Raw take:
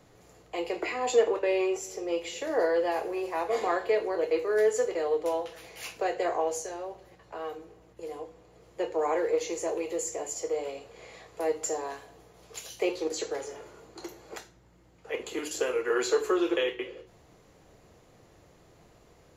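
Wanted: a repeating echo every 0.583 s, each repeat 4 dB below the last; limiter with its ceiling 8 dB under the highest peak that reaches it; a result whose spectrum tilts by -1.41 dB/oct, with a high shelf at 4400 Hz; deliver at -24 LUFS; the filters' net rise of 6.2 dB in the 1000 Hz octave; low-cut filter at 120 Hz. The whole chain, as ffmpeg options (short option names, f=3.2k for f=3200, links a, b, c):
-af "highpass=120,equalizer=f=1k:t=o:g=8,highshelf=f=4.4k:g=6.5,alimiter=limit=-18dB:level=0:latency=1,aecho=1:1:583|1166|1749|2332|2915|3498|4081|4664|5247:0.631|0.398|0.25|0.158|0.0994|0.0626|0.0394|0.0249|0.0157,volume=4dB"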